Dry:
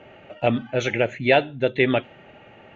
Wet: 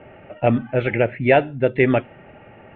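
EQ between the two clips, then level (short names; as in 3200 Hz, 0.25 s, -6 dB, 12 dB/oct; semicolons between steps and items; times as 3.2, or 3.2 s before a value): LPF 2600 Hz 24 dB/oct; air absorption 130 m; low shelf 120 Hz +6 dB; +3.0 dB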